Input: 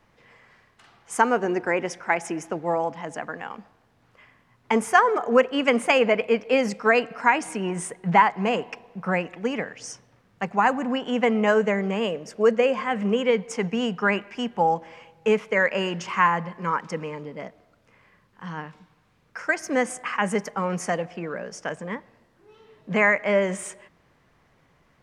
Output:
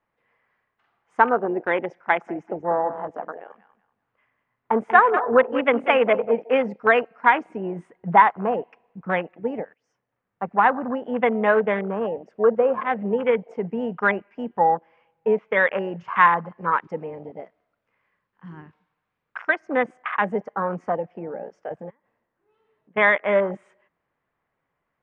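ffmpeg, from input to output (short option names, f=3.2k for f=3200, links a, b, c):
-filter_complex "[0:a]asettb=1/sr,asplit=3[a][b][c];[a]atrim=end=1.894[d];[b]atrim=start=1.89:end=6.44,asetpts=PTS-STARTPTS,afade=t=in:d=0.004:c=qsin,afade=t=out:st=4.546:d=0.004:c=qsin,aecho=1:1:190|380|570:0.282|0.0705|0.0176,atrim=end_sample=200655[e];[c]atrim=start=6.436[f];[d][e]acrossfade=d=0.004:c1=hsin:c2=qsin[g];[g][f]acrossfade=d=0.004:c1=qsin:c2=hsin,asettb=1/sr,asplit=3[h][i][j];[h]atrim=end=16.044[k];[i]atrim=start=16.04:end=19.49,asetpts=PTS-STARTPTS,afade=t=in:d=0.004:c=qsin,afade=t=out:st=3.446:d=0.004:c=qsin,highshelf=f=2.6k:g=6.5[l];[j]atrim=start=19.486[m];[k][l]acrossfade=d=0.004:c1=hsin:c2=qsin[n];[n][m]acrossfade=d=0.004:c1=qsin:c2=hsin,asplit=3[o][p][q];[o]afade=t=out:st=21.89:d=0.02[r];[p]acompressor=threshold=-44dB:ratio=16:attack=3.2:release=140:knee=1:detection=peak,afade=t=in:st=21.89:d=0.02,afade=t=out:st=22.96:d=0.02[s];[q]afade=t=in:st=22.96:d=0.02[t];[r][s][t]amix=inputs=3:normalize=0,asplit=2[u][v];[u]atrim=end=9.74,asetpts=PTS-STARTPTS,afade=t=out:st=9.736:d=0.004:c=hsin:silence=0.133352[w];[v]atrim=start=9.74,asetpts=PTS-STARTPTS,afade=t=in:d=0.72:silence=0.133352[x];[w][x]concat=n=2:v=0:a=1,afwtdn=0.0447,lowpass=2.1k,lowshelf=f=320:g=-10.5,volume=4.5dB"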